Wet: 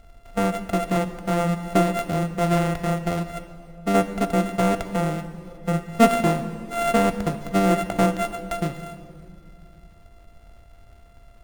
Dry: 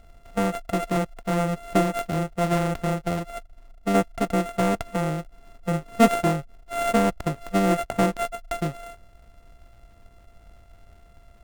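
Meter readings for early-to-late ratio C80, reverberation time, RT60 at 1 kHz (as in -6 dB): 12.0 dB, 2.5 s, 2.3 s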